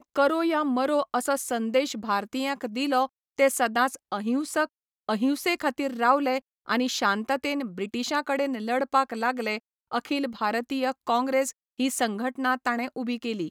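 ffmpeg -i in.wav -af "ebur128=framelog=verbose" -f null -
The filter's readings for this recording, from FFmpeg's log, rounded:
Integrated loudness:
  I:         -26.6 LUFS
  Threshold: -36.6 LUFS
Loudness range:
  LRA:         1.8 LU
  Threshold: -46.7 LUFS
  LRA low:   -27.7 LUFS
  LRA high:  -25.9 LUFS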